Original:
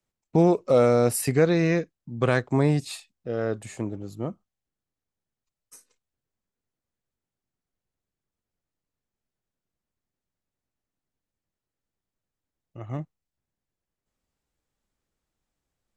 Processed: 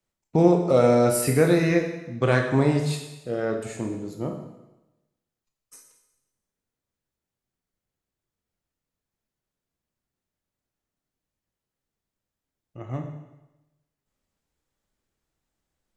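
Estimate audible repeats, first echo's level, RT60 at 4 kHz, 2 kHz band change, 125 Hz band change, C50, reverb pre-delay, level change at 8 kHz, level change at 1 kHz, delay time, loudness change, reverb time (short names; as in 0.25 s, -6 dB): none, none, 1.0 s, +2.5 dB, +1.5 dB, 5.5 dB, 17 ms, +2.0 dB, +2.0 dB, none, +1.0 dB, 1.0 s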